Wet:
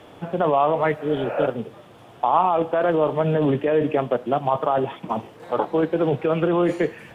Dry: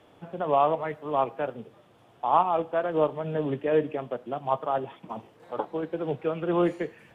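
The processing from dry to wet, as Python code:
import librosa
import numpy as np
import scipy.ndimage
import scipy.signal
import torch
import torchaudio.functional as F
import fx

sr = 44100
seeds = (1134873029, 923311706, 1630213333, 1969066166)

p1 = fx.spec_repair(x, sr, seeds[0], start_s=1.01, length_s=0.41, low_hz=480.0, high_hz=2900.0, source='both')
p2 = fx.over_compress(p1, sr, threshold_db=-29.0, ratio=-0.5)
p3 = p1 + (p2 * librosa.db_to_amplitude(2.0))
y = p3 * librosa.db_to_amplitude(2.0)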